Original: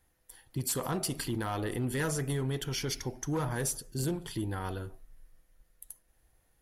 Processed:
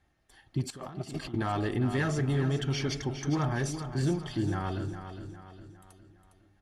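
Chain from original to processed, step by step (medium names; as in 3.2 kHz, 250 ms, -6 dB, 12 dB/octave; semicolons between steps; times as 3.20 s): 0.70–1.34 s: compressor with a negative ratio -44 dBFS, ratio -1; distance through air 110 m; comb of notches 490 Hz; feedback delay 408 ms, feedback 45%, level -9.5 dB; trim +4.5 dB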